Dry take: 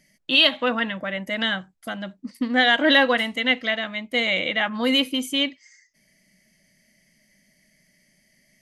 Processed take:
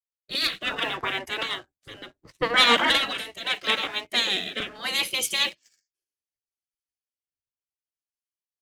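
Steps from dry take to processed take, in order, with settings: 4.09–4.60 s: high-pass 230 Hz 12 dB/octave; spectral gate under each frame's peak -15 dB weak; in parallel at +2 dB: compression 5:1, threshold -47 dBFS, peak gain reduction 20 dB; on the sum: waveshaping leveller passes 2; rotary cabinet horn 0.7 Hz; three bands expanded up and down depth 100%; trim +1.5 dB

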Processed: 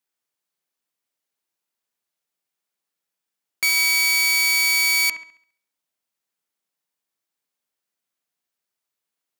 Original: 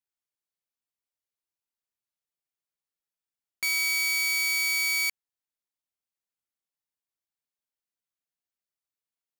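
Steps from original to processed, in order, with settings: high-pass 150 Hz; feedback echo behind a low-pass 68 ms, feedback 40%, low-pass 2.3 kHz, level -6.5 dB; trim +8 dB

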